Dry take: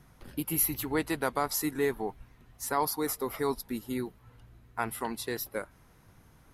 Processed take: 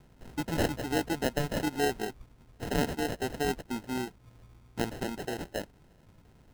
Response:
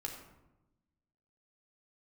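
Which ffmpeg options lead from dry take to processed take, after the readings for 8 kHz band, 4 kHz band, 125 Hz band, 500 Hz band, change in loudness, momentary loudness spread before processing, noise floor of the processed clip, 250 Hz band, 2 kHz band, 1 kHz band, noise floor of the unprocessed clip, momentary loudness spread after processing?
-7.5 dB, +3.0 dB, +5.0 dB, 0.0 dB, -1.0 dB, 12 LU, -60 dBFS, +1.5 dB, +1.5 dB, -2.0 dB, -60 dBFS, 10 LU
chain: -af "acrusher=samples=38:mix=1:aa=0.000001"

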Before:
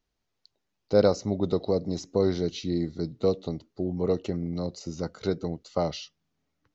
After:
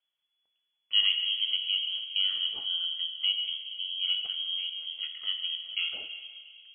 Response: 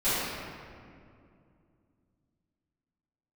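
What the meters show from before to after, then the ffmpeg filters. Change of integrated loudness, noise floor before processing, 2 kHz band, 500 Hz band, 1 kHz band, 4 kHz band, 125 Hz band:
0.0 dB, -80 dBFS, +9.0 dB, under -35 dB, under -20 dB, +18.5 dB, under -40 dB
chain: -filter_complex "[0:a]asplit=2[s0][s1];[1:a]atrim=start_sample=2205,lowpass=2100[s2];[s1][s2]afir=irnorm=-1:irlink=0,volume=0.126[s3];[s0][s3]amix=inputs=2:normalize=0,lowpass=f=2900:t=q:w=0.5098,lowpass=f=2900:t=q:w=0.6013,lowpass=f=2900:t=q:w=0.9,lowpass=f=2900:t=q:w=2.563,afreqshift=-3400,volume=0.501"

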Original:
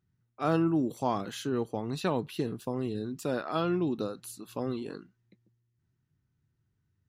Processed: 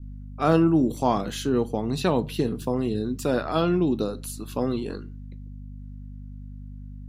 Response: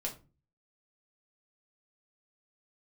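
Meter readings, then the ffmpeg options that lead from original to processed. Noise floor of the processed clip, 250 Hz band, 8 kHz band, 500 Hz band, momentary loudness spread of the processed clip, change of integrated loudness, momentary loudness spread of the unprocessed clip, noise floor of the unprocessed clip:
-39 dBFS, +7.5 dB, +7.0 dB, +7.0 dB, 20 LU, +7.0 dB, 9 LU, -78 dBFS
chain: -filter_complex "[0:a]aeval=exprs='val(0)+0.00631*(sin(2*PI*50*n/s)+sin(2*PI*2*50*n/s)/2+sin(2*PI*3*50*n/s)/3+sin(2*PI*4*50*n/s)/4+sin(2*PI*5*50*n/s)/5)':c=same,adynamicequalizer=threshold=0.00447:dfrequency=1400:dqfactor=0.93:tfrequency=1400:tqfactor=0.93:attack=5:release=100:ratio=0.375:range=3:mode=cutabove:tftype=bell,asplit=2[s0][s1];[1:a]atrim=start_sample=2205[s2];[s1][s2]afir=irnorm=-1:irlink=0,volume=0.282[s3];[s0][s3]amix=inputs=2:normalize=0,volume=1.88"

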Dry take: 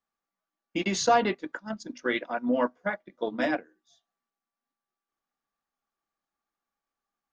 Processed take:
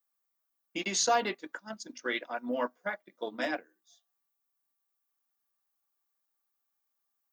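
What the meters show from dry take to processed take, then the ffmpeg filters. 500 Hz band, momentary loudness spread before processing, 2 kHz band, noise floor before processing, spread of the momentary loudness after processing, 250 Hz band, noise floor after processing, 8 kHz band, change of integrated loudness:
-6.0 dB, 13 LU, -3.5 dB, under -85 dBFS, 15 LU, -9.0 dB, -82 dBFS, +3.0 dB, -4.5 dB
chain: -af "aemphasis=mode=production:type=bsi,volume=0.596"

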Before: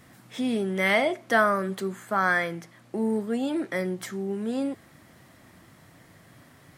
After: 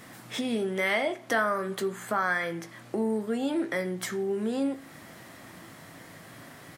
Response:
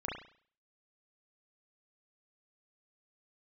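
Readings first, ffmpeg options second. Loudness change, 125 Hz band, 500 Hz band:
-3.0 dB, -4.0 dB, -2.0 dB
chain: -filter_complex "[0:a]lowshelf=f=120:g=-11.5,acompressor=threshold=0.01:ratio=2,asplit=2[s0][s1];[s1]adelay=18,volume=0.266[s2];[s0][s2]amix=inputs=2:normalize=0,asplit=2[s3][s4];[1:a]atrim=start_sample=2205[s5];[s4][s5]afir=irnorm=-1:irlink=0,volume=0.2[s6];[s3][s6]amix=inputs=2:normalize=0,volume=2"

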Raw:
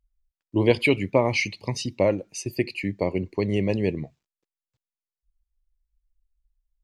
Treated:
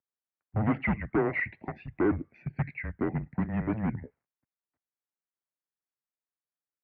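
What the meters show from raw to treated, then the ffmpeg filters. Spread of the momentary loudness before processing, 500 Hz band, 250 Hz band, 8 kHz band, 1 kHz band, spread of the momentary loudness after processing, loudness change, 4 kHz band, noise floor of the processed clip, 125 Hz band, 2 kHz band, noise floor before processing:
9 LU, -11.0 dB, -4.0 dB, under -40 dB, -4.0 dB, 9 LU, -6.0 dB, under -25 dB, under -85 dBFS, -4.0 dB, -5.5 dB, under -85 dBFS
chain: -af "asoftclip=type=hard:threshold=0.0944,highpass=f=240:t=q:w=0.5412,highpass=f=240:t=q:w=1.307,lowpass=f=2200:t=q:w=0.5176,lowpass=f=2200:t=q:w=0.7071,lowpass=f=2200:t=q:w=1.932,afreqshift=-220,highpass=82"

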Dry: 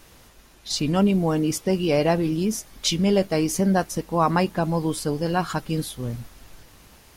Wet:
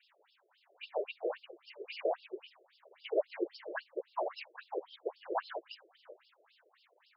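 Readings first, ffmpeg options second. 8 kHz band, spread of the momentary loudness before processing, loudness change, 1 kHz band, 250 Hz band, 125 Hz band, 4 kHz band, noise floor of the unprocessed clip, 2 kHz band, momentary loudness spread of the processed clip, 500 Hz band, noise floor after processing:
under -40 dB, 8 LU, -16.5 dB, -15.5 dB, -27.0 dB, under -40 dB, -20.0 dB, -52 dBFS, -13.5 dB, 17 LU, -13.0 dB, -72 dBFS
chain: -af "afftfilt=real='hypot(re,im)*cos(2*PI*random(0))':imag='hypot(re,im)*sin(2*PI*random(1))':win_size=512:overlap=0.75,afftfilt=real='re*between(b*sr/1024,460*pow(3900/460,0.5+0.5*sin(2*PI*3.7*pts/sr))/1.41,460*pow(3900/460,0.5+0.5*sin(2*PI*3.7*pts/sr))*1.41)':imag='im*between(b*sr/1024,460*pow(3900/460,0.5+0.5*sin(2*PI*3.7*pts/sr))/1.41,460*pow(3900/460,0.5+0.5*sin(2*PI*3.7*pts/sr))*1.41)':win_size=1024:overlap=0.75,volume=0.794"

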